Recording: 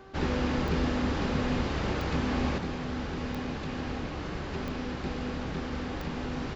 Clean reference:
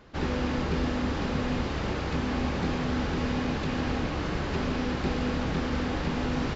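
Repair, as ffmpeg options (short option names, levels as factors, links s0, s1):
-af "adeclick=t=4,bandreject=f=386.5:t=h:w=4,bandreject=f=773:t=h:w=4,bandreject=f=1159.5:t=h:w=4,bandreject=f=1546:t=h:w=4,asetnsamples=n=441:p=0,asendcmd='2.58 volume volume 5.5dB',volume=1"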